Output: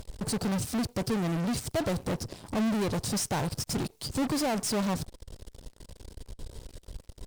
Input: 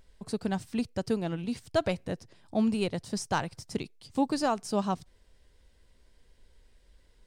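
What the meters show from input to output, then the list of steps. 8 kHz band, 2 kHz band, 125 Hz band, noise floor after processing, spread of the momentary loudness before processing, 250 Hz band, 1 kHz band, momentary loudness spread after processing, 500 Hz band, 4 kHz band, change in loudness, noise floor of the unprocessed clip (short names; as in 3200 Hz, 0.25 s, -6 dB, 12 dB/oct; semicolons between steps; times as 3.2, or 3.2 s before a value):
+9.0 dB, +0.5 dB, +5.0 dB, -61 dBFS, 9 LU, +1.0 dB, -2.0 dB, 20 LU, -1.0 dB, +4.5 dB, +1.5 dB, -62 dBFS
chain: bell 1900 Hz -13 dB 1.6 oct; in parallel at -8 dB: fuzz box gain 53 dB, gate -58 dBFS; on the sum: gain -8.5 dB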